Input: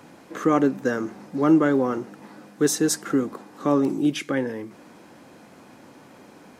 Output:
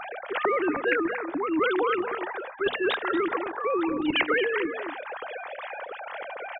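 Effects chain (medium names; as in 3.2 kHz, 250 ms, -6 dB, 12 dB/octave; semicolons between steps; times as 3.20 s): formants replaced by sine waves; hum notches 50/100/150/200/250 Hz; reverse; compression 6:1, threshold -29 dBFS, peak gain reduction 19.5 dB; reverse; echo from a far wall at 40 m, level -16 dB; spectrum-flattening compressor 2:1; trim +9 dB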